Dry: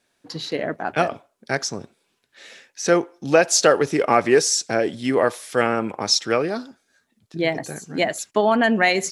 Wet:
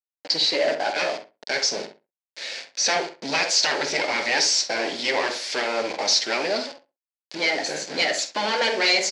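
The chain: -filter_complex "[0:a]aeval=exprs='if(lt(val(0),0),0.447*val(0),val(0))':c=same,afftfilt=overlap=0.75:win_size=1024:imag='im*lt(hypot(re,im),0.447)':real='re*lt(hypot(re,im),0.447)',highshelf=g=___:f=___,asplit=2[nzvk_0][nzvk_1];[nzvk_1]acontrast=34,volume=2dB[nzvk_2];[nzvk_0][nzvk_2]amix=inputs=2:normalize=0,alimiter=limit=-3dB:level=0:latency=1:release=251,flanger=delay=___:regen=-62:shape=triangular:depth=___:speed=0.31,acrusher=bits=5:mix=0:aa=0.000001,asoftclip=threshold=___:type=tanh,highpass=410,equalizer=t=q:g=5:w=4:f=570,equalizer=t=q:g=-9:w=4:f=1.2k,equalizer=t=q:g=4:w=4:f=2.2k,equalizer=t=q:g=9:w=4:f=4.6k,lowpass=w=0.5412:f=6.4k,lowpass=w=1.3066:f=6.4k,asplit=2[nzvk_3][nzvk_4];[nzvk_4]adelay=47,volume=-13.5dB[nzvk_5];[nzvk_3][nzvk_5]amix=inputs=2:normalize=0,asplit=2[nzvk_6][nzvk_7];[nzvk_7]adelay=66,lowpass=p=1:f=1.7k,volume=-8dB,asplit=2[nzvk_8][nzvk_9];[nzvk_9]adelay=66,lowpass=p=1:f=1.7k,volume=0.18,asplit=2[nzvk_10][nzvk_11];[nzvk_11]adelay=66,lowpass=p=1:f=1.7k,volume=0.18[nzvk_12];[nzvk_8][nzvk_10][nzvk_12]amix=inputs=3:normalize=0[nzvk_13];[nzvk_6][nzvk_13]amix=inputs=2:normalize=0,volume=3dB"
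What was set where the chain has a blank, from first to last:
4.5, 2.2k, 4.4, 7.9, -21dB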